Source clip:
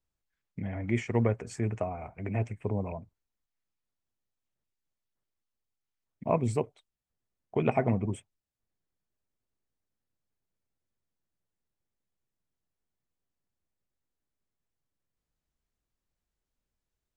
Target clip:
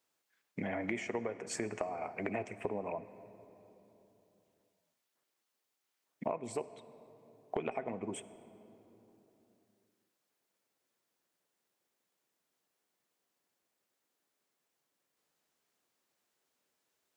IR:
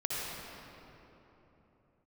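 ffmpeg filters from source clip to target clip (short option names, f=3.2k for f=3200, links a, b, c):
-filter_complex "[0:a]highpass=340,acompressor=threshold=-43dB:ratio=16,asplit=2[a][b];[1:a]atrim=start_sample=2205[c];[b][c]afir=irnorm=-1:irlink=0,volume=-19dB[d];[a][d]amix=inputs=2:normalize=0,volume=9dB"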